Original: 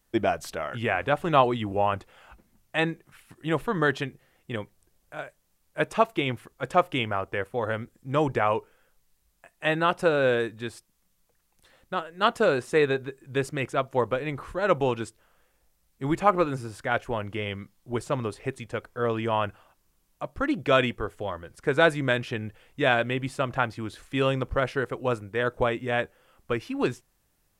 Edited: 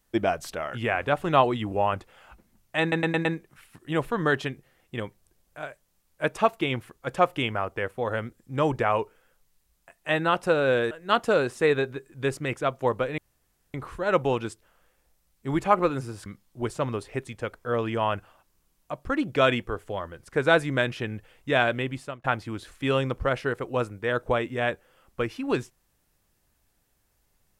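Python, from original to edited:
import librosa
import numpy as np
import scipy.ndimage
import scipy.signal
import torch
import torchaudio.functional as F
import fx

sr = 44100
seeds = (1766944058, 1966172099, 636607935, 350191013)

y = fx.edit(x, sr, fx.stutter(start_s=2.81, slice_s=0.11, count=5),
    fx.cut(start_s=10.47, length_s=1.56),
    fx.insert_room_tone(at_s=14.3, length_s=0.56),
    fx.cut(start_s=16.82, length_s=0.75),
    fx.fade_out_span(start_s=22.99, length_s=0.56, curve='qsin'), tone=tone)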